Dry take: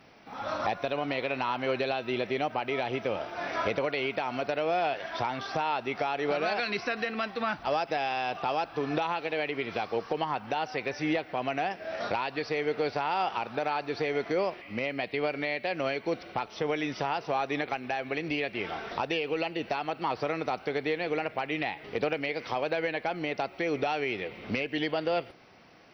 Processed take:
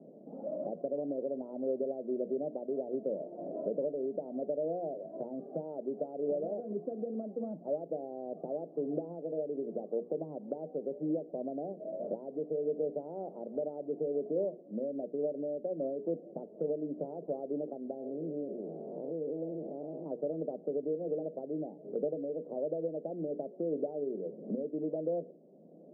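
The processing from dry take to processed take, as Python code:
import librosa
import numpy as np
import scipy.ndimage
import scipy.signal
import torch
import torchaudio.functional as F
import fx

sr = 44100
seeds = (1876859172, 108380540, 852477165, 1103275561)

y = fx.spec_blur(x, sr, span_ms=183.0, at=(17.94, 20.06))
y = scipy.signal.sosfilt(scipy.signal.cheby1(4, 1.0, [160.0, 610.0], 'bandpass', fs=sr, output='sos'), y)
y = fx.hum_notches(y, sr, base_hz=60, count=8)
y = fx.band_squash(y, sr, depth_pct=40)
y = y * 10.0 ** (-1.5 / 20.0)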